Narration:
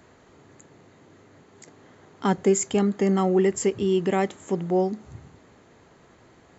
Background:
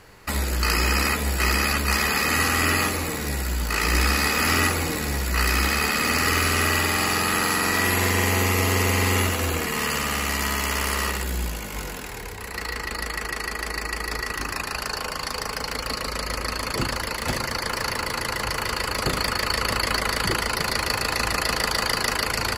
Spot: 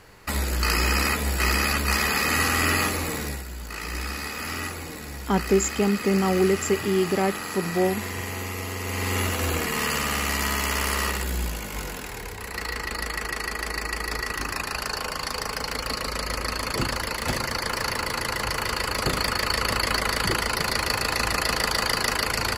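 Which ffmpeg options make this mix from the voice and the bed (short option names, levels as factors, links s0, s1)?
-filter_complex "[0:a]adelay=3050,volume=0.944[s0];[1:a]volume=2.82,afade=t=out:st=3.19:d=0.26:silence=0.334965,afade=t=in:st=8.81:d=0.7:silence=0.316228[s1];[s0][s1]amix=inputs=2:normalize=0"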